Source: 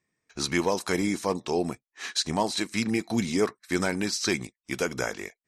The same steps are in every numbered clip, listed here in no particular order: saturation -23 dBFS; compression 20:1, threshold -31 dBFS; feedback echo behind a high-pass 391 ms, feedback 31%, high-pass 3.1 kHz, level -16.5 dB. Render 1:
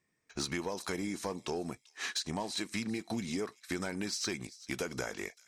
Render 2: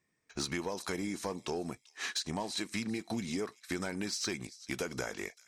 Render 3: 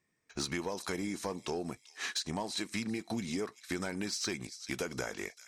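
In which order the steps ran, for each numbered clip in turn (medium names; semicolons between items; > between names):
compression > saturation > feedback echo behind a high-pass; compression > feedback echo behind a high-pass > saturation; feedback echo behind a high-pass > compression > saturation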